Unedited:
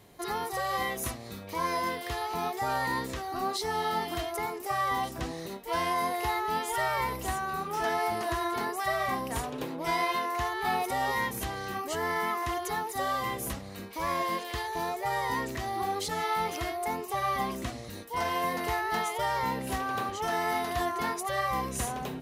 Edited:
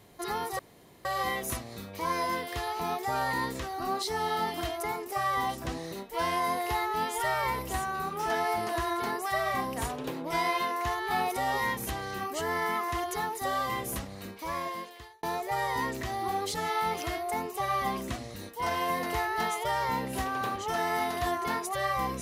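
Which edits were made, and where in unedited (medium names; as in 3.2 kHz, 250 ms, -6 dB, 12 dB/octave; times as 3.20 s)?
0.59 s: insert room tone 0.46 s
13.77–14.77 s: fade out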